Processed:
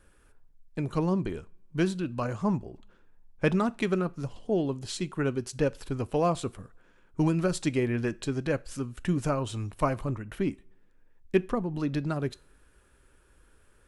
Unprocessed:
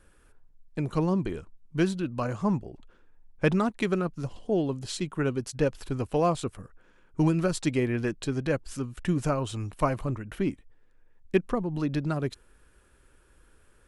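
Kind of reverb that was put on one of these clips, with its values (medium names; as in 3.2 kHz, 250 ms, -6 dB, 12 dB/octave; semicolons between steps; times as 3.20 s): two-slope reverb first 0.33 s, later 1.6 s, from -25 dB, DRR 17 dB; trim -1 dB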